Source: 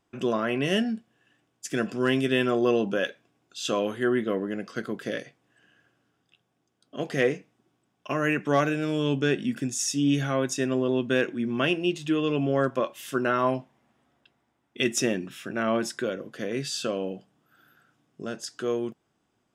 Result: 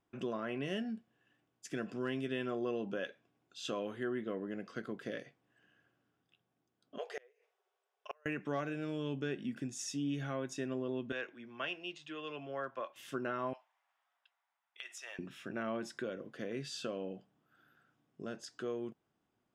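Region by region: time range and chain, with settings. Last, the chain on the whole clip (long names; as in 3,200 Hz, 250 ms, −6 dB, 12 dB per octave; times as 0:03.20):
0:06.98–0:08.26: linear-phase brick-wall high-pass 380 Hz + gate with flip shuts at −20 dBFS, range −33 dB
0:11.12–0:12.96: three-way crossover with the lows and the highs turned down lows −15 dB, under 580 Hz, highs −21 dB, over 8,000 Hz + multiband upward and downward expander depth 40%
0:13.53–0:15.19: high-pass filter 820 Hz 24 dB per octave + downward compressor 12 to 1, threshold −32 dBFS
whole clip: high-shelf EQ 5,900 Hz −10.5 dB; downward compressor 2 to 1, threshold −30 dBFS; level −7.5 dB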